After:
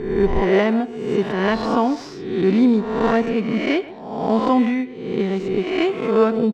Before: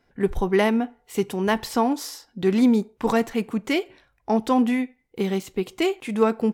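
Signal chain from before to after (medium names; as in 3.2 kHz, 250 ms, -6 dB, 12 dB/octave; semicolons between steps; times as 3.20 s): reverse spectral sustain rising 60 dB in 0.98 s; band-stop 850 Hz, Q 13; in parallel at -10 dB: sample-and-hold 11×; on the sum: distance through air 170 m; speakerphone echo 130 ms, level -17 dB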